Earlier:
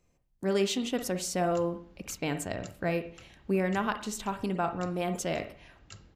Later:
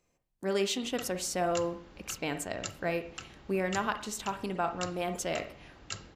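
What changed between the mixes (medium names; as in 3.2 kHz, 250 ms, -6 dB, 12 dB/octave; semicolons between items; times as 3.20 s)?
background +11.0 dB; master: add bass shelf 210 Hz -10 dB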